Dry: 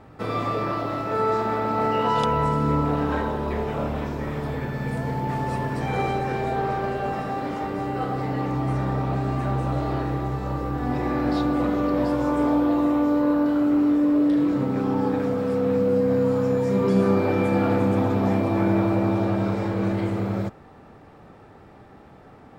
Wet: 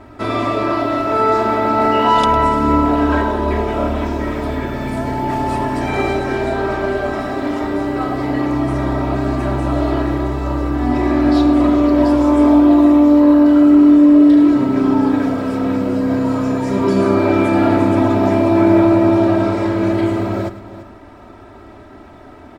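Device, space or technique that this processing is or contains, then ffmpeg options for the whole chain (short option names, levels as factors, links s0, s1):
ducked delay: -filter_complex "[0:a]aecho=1:1:3.1:0.78,aecho=1:1:105:0.188,asplit=3[s0][s1][s2];[s1]adelay=339,volume=0.447[s3];[s2]apad=whole_len=1015739[s4];[s3][s4]sidechaincompress=threshold=0.0126:ratio=4:attack=16:release=638[s5];[s0][s5]amix=inputs=2:normalize=0,volume=2.11"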